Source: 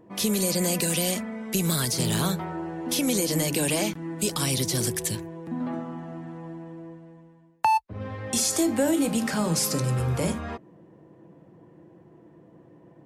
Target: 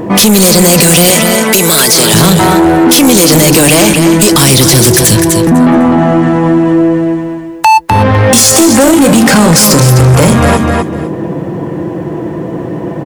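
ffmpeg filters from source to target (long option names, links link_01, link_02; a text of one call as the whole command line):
ffmpeg -i in.wav -filter_complex "[0:a]acompressor=threshold=-27dB:ratio=6,asettb=1/sr,asplit=3[link_01][link_02][link_03];[link_01]atrim=end=1.104[link_04];[link_02]atrim=start=1.1:end=2.14,asetpts=PTS-STARTPTS,afade=type=in:duration=0.004:curve=qsin,afade=type=out:start_time=1.036:duration=0.004:curve=qsin,highpass=340[link_05];[link_03]atrim=start=2.136[link_06];[link_04][link_05]acrossfade=duration=0.004:curve1=hsin:curve2=qsin[link_07];[link_07][link_06]acrossfade=duration=0.004:curve1=qsin:curve2=hsin,aecho=1:1:252|504|756:0.355|0.0639|0.0115,asoftclip=type=tanh:threshold=-32dB,alimiter=level_in=35.5dB:limit=-1dB:release=50:level=0:latency=1,volume=-1dB" out.wav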